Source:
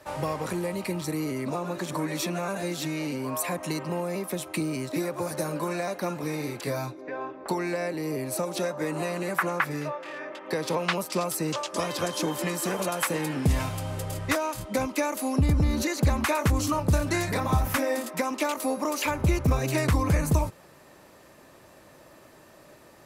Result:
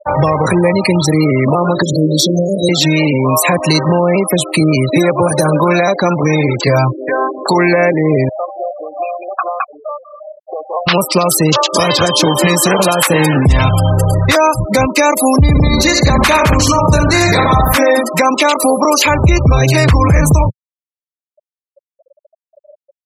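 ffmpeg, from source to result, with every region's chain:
-filter_complex "[0:a]asettb=1/sr,asplit=3[s0][s1][s2];[s0]atrim=end=1.824[s3];[s1]atrim=start=1.82:end=2.69,asetpts=PTS-STARTPTS,afade=t=in:d=0.004:c=qsin,afade=t=out:st=0.866:d=0.004:c=qsin,asuperstop=centerf=1400:order=12:qfactor=0.51,bandreject=f=60:t=h:w=6,bandreject=f=120:t=h:w=6,bandreject=f=180:t=h:w=6[s4];[s2]atrim=start=2.686[s5];[s3][s4]acrossfade=d=0.004:c1=hsin:c2=qsin[s6];[s6][s5]acrossfade=d=0.004:c1=qsin:c2=hsin,asettb=1/sr,asplit=3[s7][s8][s9];[s7]atrim=end=8.294[s10];[s8]atrim=start=8.29:end=10.87,asetpts=PTS-STARTPTS,afade=t=in:d=0.004:c=qsin,afade=t=out:st=2.576:d=0.004:c=qsin,asplit=3[s11][s12][s13];[s11]bandpass=f=730:t=q:w=8,volume=1[s14];[s12]bandpass=f=1090:t=q:w=8,volume=0.501[s15];[s13]bandpass=f=2440:t=q:w=8,volume=0.355[s16];[s14][s15][s16]amix=inputs=3:normalize=0,asoftclip=type=hard:threshold=0.0355[s17];[s9]atrim=start=10.866[s18];[s10][s17]acrossfade=d=0.004:c1=hsin:c2=qsin[s19];[s19][s18]acrossfade=d=0.004:c1=qsin:c2=hsin,asettb=1/sr,asplit=3[s20][s21][s22];[s20]atrim=end=15.484[s23];[s21]atrim=start=15.48:end=17.76,asetpts=PTS-STARTPTS,afade=t=in:d=0.004:c=qsin,afade=t=out:st=2.276:d=0.004:c=qsin,equalizer=f=79:w=1.2:g=-9,aecho=1:1:69|138|207|276|345|414|483:0.422|0.232|0.128|0.0702|0.0386|0.0212|0.0117,atrim=end_sample=100548[s24];[s22]atrim=start=17.756[s25];[s23][s24]acrossfade=d=0.004:c1=hsin:c2=qsin[s26];[s26][s25]acrossfade=d=0.004:c1=qsin:c2=hsin,afftfilt=real='re*gte(hypot(re,im),0.02)':imag='im*gte(hypot(re,im),0.02)':win_size=1024:overlap=0.75,equalizer=f=125:t=o:w=1:g=4,equalizer=f=250:t=o:w=1:g=-4,equalizer=f=4000:t=o:w=1:g=7,alimiter=level_in=11.2:limit=0.891:release=50:level=0:latency=1,volume=0.891"

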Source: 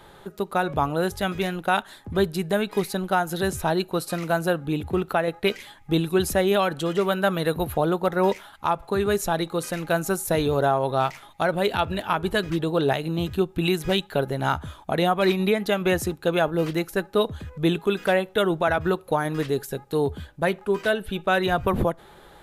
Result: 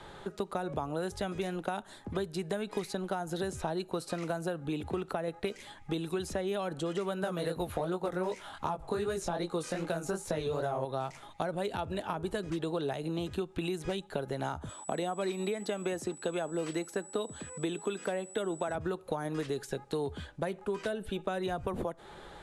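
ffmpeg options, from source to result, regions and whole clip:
-filter_complex "[0:a]asettb=1/sr,asplit=3[s0][s1][s2];[s0]atrim=end=7.214[s3];[s1]atrim=start=7.21:end=10.85,asetpts=PTS-STARTPTS,afade=t=in:d=0.004:c=qsin,afade=t=out:st=3.636:d=0.004:c=qsin,acontrast=84,flanger=delay=16:depth=6.8:speed=2.6[s4];[s2]atrim=start=10.846[s5];[s3][s4]acrossfade=d=0.004:c1=hsin:c2=qsin[s6];[s6][s5]acrossfade=d=0.004:c1=qsin:c2=hsin,asettb=1/sr,asplit=3[s7][s8][s9];[s7]atrim=end=14.694[s10];[s8]atrim=start=14.69:end=18.75,asetpts=PTS-STARTPTS,afade=t=in:d=0.004:c=qsin,afade=t=out:st=4.056:d=0.004:c=qsin,aeval=exprs='val(0)+0.00631*sin(2*PI*7900*n/s)':c=same,highpass=210[s11];[s9]atrim=start=18.746[s12];[s10][s11]acrossfade=d=0.004:c1=hsin:c2=qsin[s13];[s13][s12]acrossfade=d=0.004:c1=qsin:c2=hsin,acompressor=threshold=0.0708:ratio=2.5,lowpass=f=9200:w=0.5412,lowpass=f=9200:w=1.3066,acrossover=split=270|900|6700[s14][s15][s16][s17];[s14]acompressor=threshold=0.00794:ratio=4[s18];[s15]acompressor=threshold=0.02:ratio=4[s19];[s16]acompressor=threshold=0.00562:ratio=4[s20];[s17]acompressor=threshold=0.00316:ratio=4[s21];[s18][s19][s20][s21]amix=inputs=4:normalize=0"

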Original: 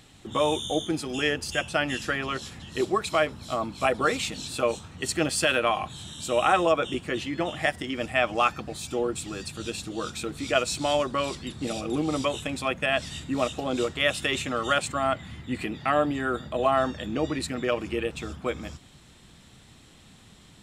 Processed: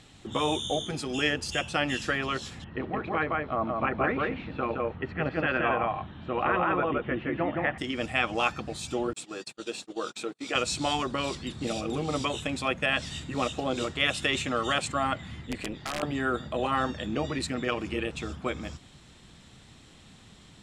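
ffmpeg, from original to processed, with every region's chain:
-filter_complex "[0:a]asettb=1/sr,asplit=3[s0][s1][s2];[s0]atrim=end=2.644[s3];[s1]atrim=start=2.64:end=7.78,asetpts=PTS-STARTPTS,afade=t=in:d=0.004:c=qsin,afade=t=out:st=5.136:d=0.004:c=qsin,lowpass=f=2100:w=0.5412,lowpass=f=2100:w=1.3066,aecho=1:1:169:0.668,atrim=end_sample=226674[s4];[s2]atrim=start=7.776[s5];[s3][s4]acrossfade=d=0.004:c1=hsin:c2=qsin[s6];[s6][s5]acrossfade=d=0.004:c1=qsin:c2=hsin,asettb=1/sr,asplit=3[s7][s8][s9];[s7]atrim=end=9.134[s10];[s8]atrim=start=9.13:end=10.55,asetpts=PTS-STARTPTS,afade=t=in:d=0.004:c=qsin,afade=t=out:st=1.416:d=0.004:c=qsin,highpass=400,agate=range=0.0141:threshold=0.00891:ratio=16:release=100:detection=peak,tiltshelf=f=860:g=3.5[s11];[s9]atrim=start=10.546[s12];[s10][s11]acrossfade=d=0.004:c1=hsin:c2=qsin[s13];[s13][s12]acrossfade=d=0.004:c1=qsin:c2=hsin,asettb=1/sr,asplit=3[s14][s15][s16];[s14]atrim=end=15.474[s17];[s15]atrim=start=15.47:end=16.03,asetpts=PTS-STARTPTS,afade=t=in:d=0.004:c=qsin,afade=t=out:st=0.556:d=0.004:c=qsin,acompressor=threshold=0.0708:ratio=16:attack=3.2:release=140:knee=1:detection=peak,tremolo=f=210:d=0.75,aeval=exprs='(mod(14.1*val(0)+1,2)-1)/14.1':c=same[s18];[s16]atrim=start=16.026[s19];[s17][s18]acrossfade=d=0.004:c1=hsin:c2=qsin[s20];[s20][s19]acrossfade=d=0.004:c1=qsin:c2=hsin,lowpass=8700,afftfilt=real='re*lt(hypot(re,im),0.447)':imag='im*lt(hypot(re,im),0.447)':win_size=1024:overlap=0.75"

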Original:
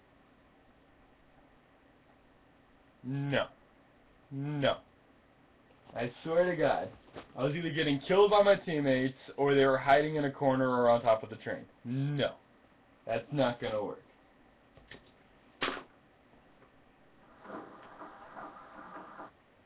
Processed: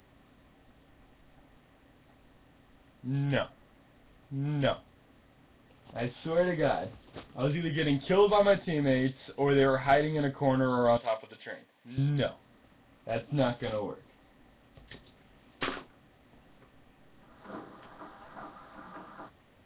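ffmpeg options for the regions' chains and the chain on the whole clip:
-filter_complex "[0:a]asettb=1/sr,asplit=3[s0][s1][s2];[s0]atrim=end=10.974[s3];[s1]atrim=start=10.97:end=11.98,asetpts=PTS-STARTPTS,afade=t=in:d=0.004:c=qsin,afade=t=out:st=1.006:d=0.004:c=qsin,highpass=f=940:p=1,bandreject=f=1300:w=8.1[s4];[s2]atrim=start=11.976[s5];[s3][s4]acrossfade=d=0.004:c1=hsin:c2=qsin[s6];[s6][s5]acrossfade=d=0.004:c1=qsin:c2=hsin,acrossover=split=3100[s7][s8];[s8]acompressor=threshold=0.00178:ratio=4:attack=1:release=60[s9];[s7][s9]amix=inputs=2:normalize=0,bass=f=250:g=6,treble=f=4000:g=12"

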